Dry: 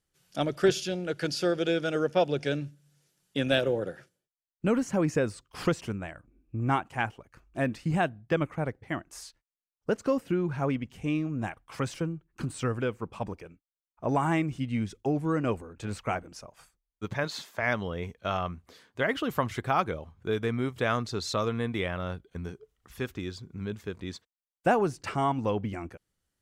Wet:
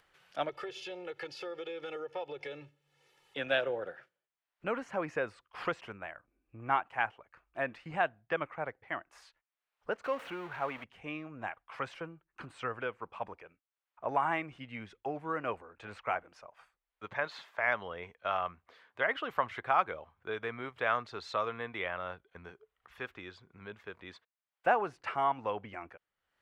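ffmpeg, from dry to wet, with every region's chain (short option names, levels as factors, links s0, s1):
-filter_complex "[0:a]asettb=1/sr,asplit=3[s0][s1][s2];[s0]atrim=end=0.494[s3];[s1]atrim=start=0.49:end=3.37,asetpts=PTS-STARTPTS,afade=t=in:d=0.004:c=qsin,afade=t=out:st=2.876:d=0.004:c=qsin,equalizer=f=1500:w=4.4:g=-10.5,aecho=1:1:2.3:0.92,atrim=end_sample=127008,acompressor=threshold=0.0316:ratio=5:attack=3.2:release=140:knee=1:detection=peak[s4];[s2]atrim=start=3.366[s5];[s3][s4]acrossfade=d=0.004:c1=hsin:c2=qsin[s6];[s6][s5]acrossfade=d=0.004:c1=qsin:c2=hsin,asettb=1/sr,asplit=3[s7][s8][s9];[s7]atrim=end=10.044[s10];[s8]atrim=start=10.04:end=10.84,asetpts=PTS-STARTPTS,afade=t=in:d=0.004:c=qsin,afade=t=out:st=0.796:d=0.004:c=qsin,aeval=exprs='val(0)+0.5*0.0178*sgn(val(0))':c=same,lowshelf=f=400:g=-6,bandreject=f=5000:w=15[s11];[s9]atrim=start=10.836[s12];[s10][s11]acrossfade=d=0.004:c1=hsin:c2=qsin[s13];[s13][s12]acrossfade=d=0.004:c1=qsin:c2=hsin,acrossover=split=550 3100:gain=0.126 1 0.0794[s14][s15][s16];[s14][s15][s16]amix=inputs=3:normalize=0,acompressor=mode=upward:threshold=0.002:ratio=2.5"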